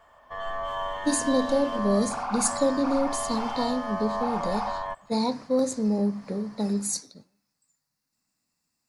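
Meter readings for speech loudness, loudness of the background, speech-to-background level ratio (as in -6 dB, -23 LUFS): -27.0 LUFS, -32.0 LUFS, 5.0 dB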